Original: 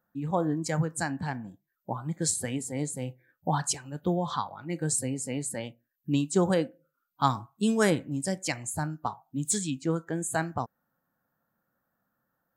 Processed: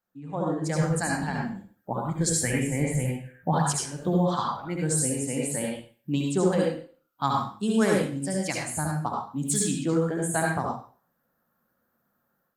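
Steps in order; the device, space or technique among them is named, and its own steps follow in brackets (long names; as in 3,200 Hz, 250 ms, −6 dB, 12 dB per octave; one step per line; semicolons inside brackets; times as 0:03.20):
0:02.29–0:03.53: graphic EQ with 10 bands 125 Hz +7 dB, 2,000 Hz +10 dB, 4,000 Hz −10 dB, 8,000 Hz −3 dB
far-field microphone of a smart speaker (convolution reverb RT60 0.40 s, pre-delay 64 ms, DRR −2 dB; high-pass filter 88 Hz 12 dB per octave; automatic gain control gain up to 10.5 dB; level −8.5 dB; Opus 32 kbit/s 48,000 Hz)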